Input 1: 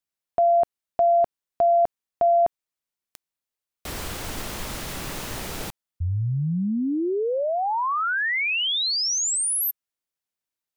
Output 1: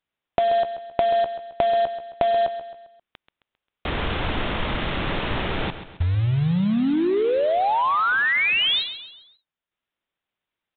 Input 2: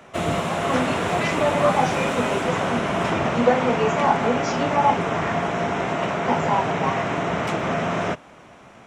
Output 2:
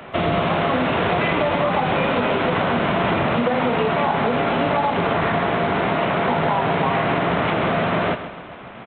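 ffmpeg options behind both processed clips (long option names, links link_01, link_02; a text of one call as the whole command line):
ffmpeg -i in.wav -af "acompressor=threshold=-29dB:ratio=16:attack=36:release=34:knee=6:detection=rms,aresample=8000,acrusher=bits=4:mode=log:mix=0:aa=0.000001,aresample=44100,aecho=1:1:133|266|399|532:0.266|0.117|0.0515|0.0227,volume=8.5dB" out.wav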